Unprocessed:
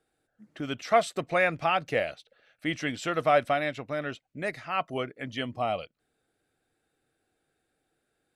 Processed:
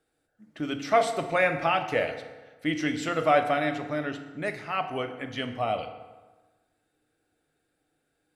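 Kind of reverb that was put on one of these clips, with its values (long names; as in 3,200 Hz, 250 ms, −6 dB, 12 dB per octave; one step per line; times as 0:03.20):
feedback delay network reverb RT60 1.3 s, low-frequency decay 1×, high-frequency decay 0.65×, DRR 5.5 dB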